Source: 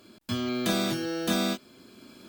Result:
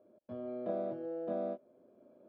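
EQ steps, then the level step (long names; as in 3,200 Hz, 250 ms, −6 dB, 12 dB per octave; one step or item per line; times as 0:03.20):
resonant band-pass 580 Hz, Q 6.7
high-frequency loss of the air 190 metres
spectral tilt −3 dB per octave
+1.5 dB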